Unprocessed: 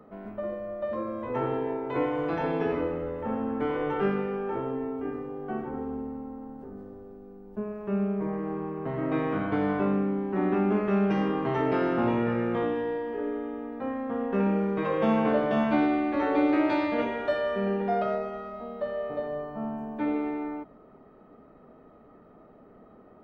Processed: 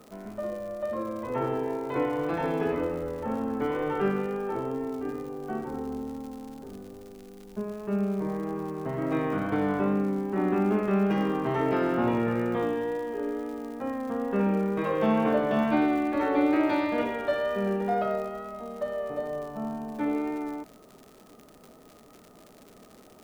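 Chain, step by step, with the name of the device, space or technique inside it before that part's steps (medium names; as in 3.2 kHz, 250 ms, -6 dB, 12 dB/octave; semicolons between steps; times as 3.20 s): vinyl LP (wow and flutter 18 cents; crackle 120 per s -39 dBFS; white noise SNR 40 dB)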